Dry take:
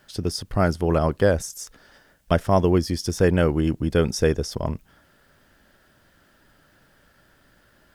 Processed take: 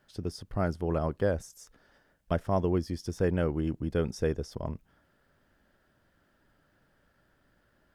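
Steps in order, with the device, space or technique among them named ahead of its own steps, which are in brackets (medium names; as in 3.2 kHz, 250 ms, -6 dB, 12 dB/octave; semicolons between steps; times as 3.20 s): behind a face mask (treble shelf 2.2 kHz -7.5 dB); trim -8.5 dB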